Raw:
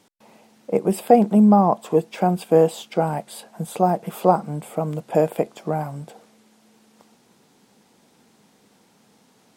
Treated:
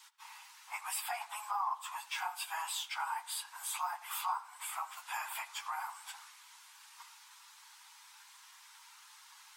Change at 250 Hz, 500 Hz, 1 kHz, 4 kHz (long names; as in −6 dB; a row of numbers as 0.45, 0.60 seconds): below −40 dB, −38.5 dB, −14.5 dB, −0.5 dB